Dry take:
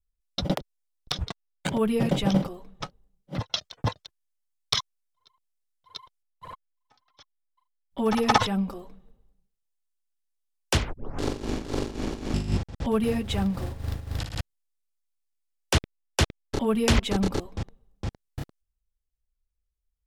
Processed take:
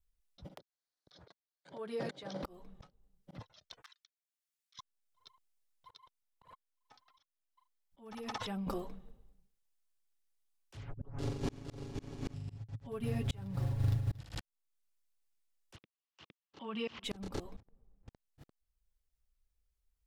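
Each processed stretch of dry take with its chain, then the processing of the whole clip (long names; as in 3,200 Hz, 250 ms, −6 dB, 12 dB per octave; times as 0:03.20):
0:00.59–0:02.43: downward compressor 3 to 1, threshold −31 dBFS + loudspeaker in its box 210–8,900 Hz, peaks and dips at 220 Hz −9 dB, 580 Hz +4 dB, 1,600 Hz +5 dB, 2,700 Hz −8 dB, 4,300 Hz +7 dB, 7,800 Hz −7 dB
0:03.82–0:04.79: Butterworth high-pass 1,300 Hz + downward compressor 16 to 1, threshold −34 dBFS
0:05.96–0:08.67: low-shelf EQ 210 Hz −4 dB + downward compressor 4 to 1, threshold −39 dBFS
0:10.77–0:14.21: parametric band 110 Hz +14.5 dB 0.8 octaves + comb filter 7.2 ms, depth 70%
0:15.76–0:17.04: downward compressor 3 to 1, threshold −23 dBFS + loudspeaker in its box 210–5,700 Hz, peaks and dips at 250 Hz −6 dB, 410 Hz −6 dB, 610 Hz −6 dB, 1,100 Hz +5 dB, 2,900 Hz +8 dB
0:17.60–0:18.08: running median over 15 samples + high-frequency loss of the air 340 metres + downward compressor 3 to 1, threshold −46 dBFS
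whole clip: downward compressor 6 to 1, threshold −29 dBFS; volume swells 474 ms; level +1 dB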